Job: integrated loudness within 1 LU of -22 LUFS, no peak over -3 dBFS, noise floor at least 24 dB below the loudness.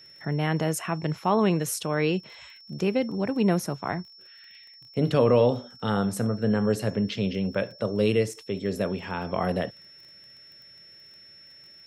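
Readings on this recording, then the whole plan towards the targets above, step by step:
ticks 22/s; steady tone 5400 Hz; tone level -48 dBFS; loudness -26.5 LUFS; peak -9.5 dBFS; loudness target -22.0 LUFS
-> de-click; notch 5400 Hz, Q 30; gain +4.5 dB

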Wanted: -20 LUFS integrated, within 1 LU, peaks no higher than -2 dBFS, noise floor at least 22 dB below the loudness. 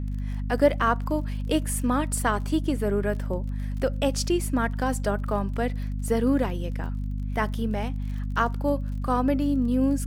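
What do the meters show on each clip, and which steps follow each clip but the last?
ticks 34/s; hum 50 Hz; harmonics up to 250 Hz; hum level -27 dBFS; loudness -26.5 LUFS; peak -7.5 dBFS; loudness target -20.0 LUFS
-> de-click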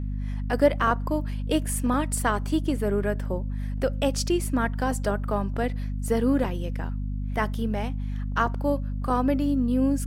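ticks 0.20/s; hum 50 Hz; harmonics up to 250 Hz; hum level -27 dBFS
-> de-hum 50 Hz, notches 5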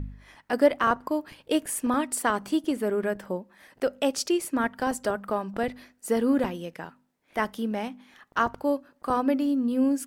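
hum none; loudness -27.5 LUFS; peak -8.0 dBFS; loudness target -20.0 LUFS
-> gain +7.5 dB; limiter -2 dBFS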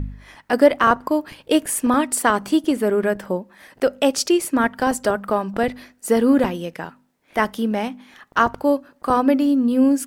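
loudness -20.0 LUFS; peak -2.0 dBFS; noise floor -61 dBFS

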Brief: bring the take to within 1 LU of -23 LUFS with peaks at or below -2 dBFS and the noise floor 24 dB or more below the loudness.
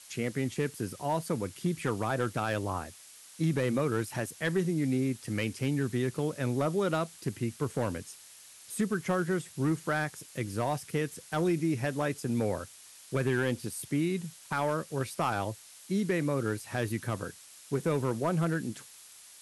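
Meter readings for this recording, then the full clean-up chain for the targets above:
clipped 0.4%; flat tops at -20.5 dBFS; noise floor -53 dBFS; noise floor target -56 dBFS; loudness -32.0 LUFS; peak -20.5 dBFS; loudness target -23.0 LUFS
-> clip repair -20.5 dBFS; denoiser 6 dB, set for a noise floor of -53 dBFS; gain +9 dB

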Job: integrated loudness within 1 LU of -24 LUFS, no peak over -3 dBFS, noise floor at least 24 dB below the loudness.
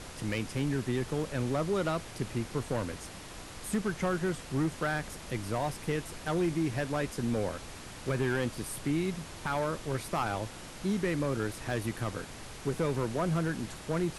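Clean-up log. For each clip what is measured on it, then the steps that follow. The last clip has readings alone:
clipped 1.1%; flat tops at -23.0 dBFS; noise floor -46 dBFS; noise floor target -57 dBFS; loudness -33.0 LUFS; peak -23.0 dBFS; loudness target -24.0 LUFS
-> clip repair -23 dBFS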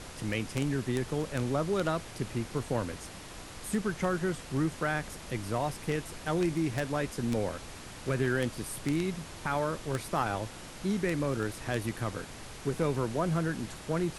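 clipped 0.0%; noise floor -46 dBFS; noise floor target -57 dBFS
-> noise print and reduce 11 dB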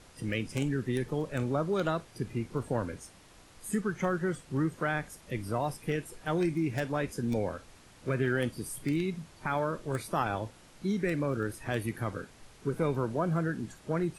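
noise floor -56 dBFS; noise floor target -57 dBFS
-> noise print and reduce 6 dB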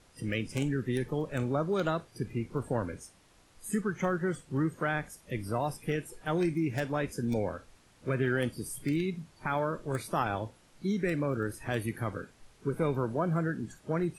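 noise floor -62 dBFS; loudness -33.0 LUFS; peak -15.0 dBFS; loudness target -24.0 LUFS
-> gain +9 dB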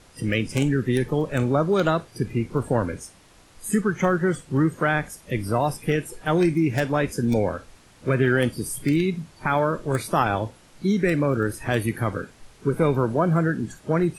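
loudness -24.0 LUFS; peak -6.0 dBFS; noise floor -53 dBFS

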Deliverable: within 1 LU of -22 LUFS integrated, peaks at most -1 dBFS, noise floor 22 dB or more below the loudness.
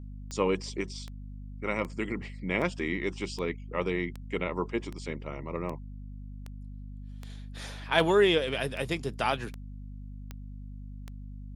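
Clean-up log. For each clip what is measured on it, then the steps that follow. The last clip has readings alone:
clicks 15; hum 50 Hz; harmonics up to 250 Hz; hum level -39 dBFS; loudness -31.0 LUFS; peak -7.5 dBFS; loudness target -22.0 LUFS
-> de-click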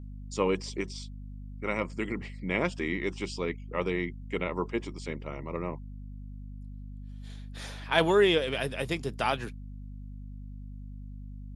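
clicks 0; hum 50 Hz; harmonics up to 250 Hz; hum level -39 dBFS
-> notches 50/100/150/200/250 Hz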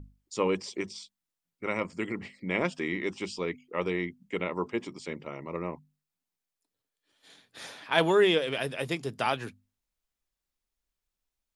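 hum none; loudness -31.0 LUFS; peak -7.5 dBFS; loudness target -22.0 LUFS
-> gain +9 dB; limiter -1 dBFS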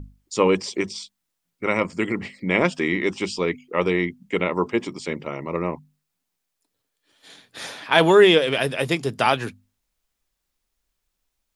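loudness -22.0 LUFS; peak -1.0 dBFS; noise floor -79 dBFS

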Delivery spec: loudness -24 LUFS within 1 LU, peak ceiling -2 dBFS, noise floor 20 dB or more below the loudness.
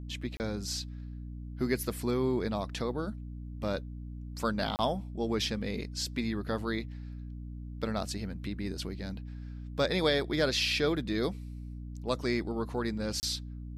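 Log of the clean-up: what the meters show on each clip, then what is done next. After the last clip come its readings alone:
dropouts 3; longest dropout 29 ms; hum 60 Hz; harmonics up to 300 Hz; hum level -39 dBFS; loudness -33.0 LUFS; peak -15.5 dBFS; loudness target -24.0 LUFS
-> interpolate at 0.37/4.76/13.2, 29 ms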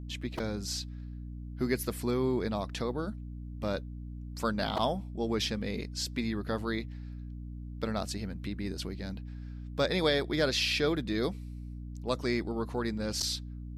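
dropouts 0; hum 60 Hz; harmonics up to 300 Hz; hum level -39 dBFS
-> de-hum 60 Hz, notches 5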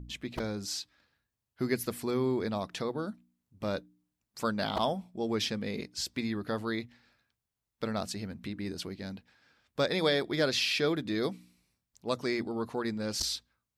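hum none; loudness -33.0 LUFS; peak -16.0 dBFS; loudness target -24.0 LUFS
-> gain +9 dB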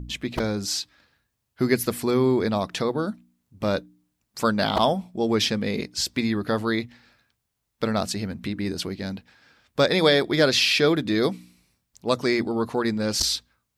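loudness -24.0 LUFS; peak -7.0 dBFS; noise floor -78 dBFS

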